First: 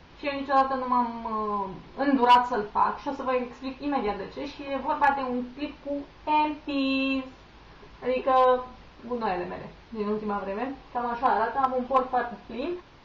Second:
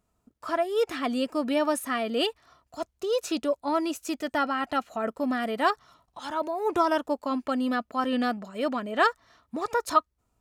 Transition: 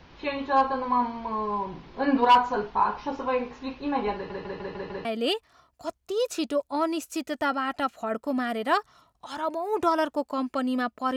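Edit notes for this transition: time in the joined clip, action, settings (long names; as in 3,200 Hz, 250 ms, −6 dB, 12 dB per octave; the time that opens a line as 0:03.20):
first
0:04.15: stutter in place 0.15 s, 6 plays
0:05.05: continue with second from 0:01.98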